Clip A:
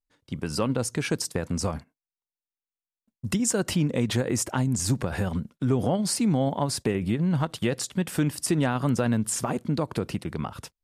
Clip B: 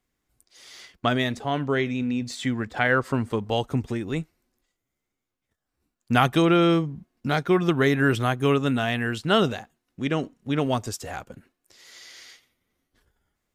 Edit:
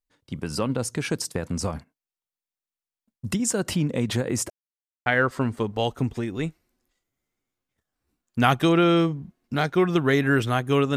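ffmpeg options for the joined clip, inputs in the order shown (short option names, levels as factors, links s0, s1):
-filter_complex "[0:a]apad=whole_dur=10.96,atrim=end=10.96,asplit=2[s0][s1];[s0]atrim=end=4.5,asetpts=PTS-STARTPTS,afade=t=out:st=4.496:d=0.004:c=hsin[s2];[s1]atrim=start=4.5:end=5.06,asetpts=PTS-STARTPTS,volume=0[s3];[1:a]atrim=start=2.79:end=8.69,asetpts=PTS-STARTPTS,afade=t=in:d=0.004:c=hsin[s4];[s2][s3][s4]concat=n=3:v=0:a=1"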